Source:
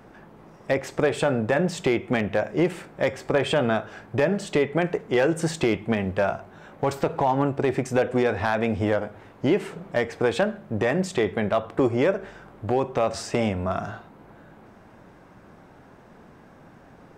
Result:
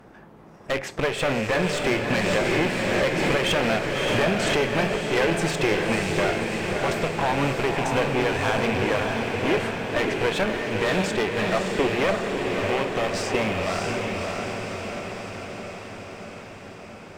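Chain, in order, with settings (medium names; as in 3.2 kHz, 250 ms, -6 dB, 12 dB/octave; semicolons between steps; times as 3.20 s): rattle on loud lows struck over -31 dBFS, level -26 dBFS; dynamic bell 2.4 kHz, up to +6 dB, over -40 dBFS, Q 0.78; one-sided clip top -27.5 dBFS; echo that smears into a reverb 599 ms, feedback 68%, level -3 dB; 2.10–4.59 s: swell ahead of each attack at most 22 dB/s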